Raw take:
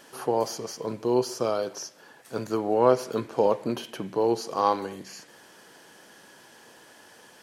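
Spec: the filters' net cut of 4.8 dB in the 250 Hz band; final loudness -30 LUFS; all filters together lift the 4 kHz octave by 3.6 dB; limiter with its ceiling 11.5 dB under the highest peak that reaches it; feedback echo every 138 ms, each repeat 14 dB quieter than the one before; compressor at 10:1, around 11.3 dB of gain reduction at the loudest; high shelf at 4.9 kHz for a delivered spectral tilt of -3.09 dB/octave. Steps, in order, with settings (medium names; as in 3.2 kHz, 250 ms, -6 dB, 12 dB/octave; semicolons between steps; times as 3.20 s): peaking EQ 250 Hz -7.5 dB; peaking EQ 4 kHz +7 dB; treble shelf 4.9 kHz -4 dB; compression 10:1, threshold -26 dBFS; peak limiter -26.5 dBFS; feedback delay 138 ms, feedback 20%, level -14 dB; trim +7.5 dB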